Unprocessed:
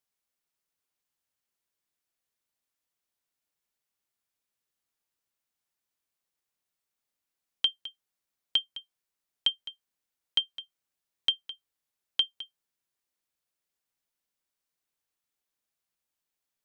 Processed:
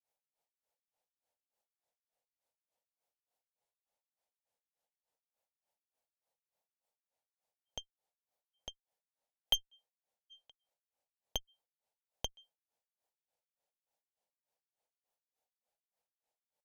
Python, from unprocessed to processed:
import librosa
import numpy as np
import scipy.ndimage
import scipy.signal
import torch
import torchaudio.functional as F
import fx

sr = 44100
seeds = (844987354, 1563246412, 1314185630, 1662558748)

y = fx.granulator(x, sr, seeds[0], grain_ms=231.0, per_s=3.4, spray_ms=100.0, spread_st=0)
y = fx.cheby_harmonics(y, sr, harmonics=(8,), levels_db=(-14,), full_scale_db=-16.0)
y = fx.band_shelf(y, sr, hz=650.0, db=14.0, octaves=1.2)
y = F.gain(torch.from_numpy(y), -4.0).numpy()